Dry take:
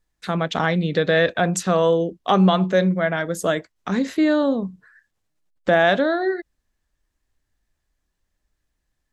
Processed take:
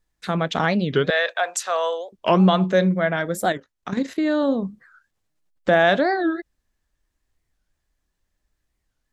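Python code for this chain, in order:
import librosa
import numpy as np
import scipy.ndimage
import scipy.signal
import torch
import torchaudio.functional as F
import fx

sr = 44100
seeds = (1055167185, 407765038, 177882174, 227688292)

y = fx.highpass(x, sr, hz=620.0, slope=24, at=(1.1, 2.14))
y = fx.level_steps(y, sr, step_db=10, at=(3.54, 4.49))
y = fx.record_warp(y, sr, rpm=45.0, depth_cents=250.0)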